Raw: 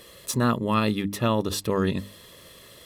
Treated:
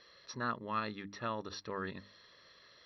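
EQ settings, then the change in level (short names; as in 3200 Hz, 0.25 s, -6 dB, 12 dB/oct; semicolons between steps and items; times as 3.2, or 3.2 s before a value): rippled Chebyshev low-pass 5800 Hz, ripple 9 dB; dynamic EQ 4600 Hz, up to -5 dB, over -50 dBFS, Q 1; low shelf 340 Hz -7 dB; -5.5 dB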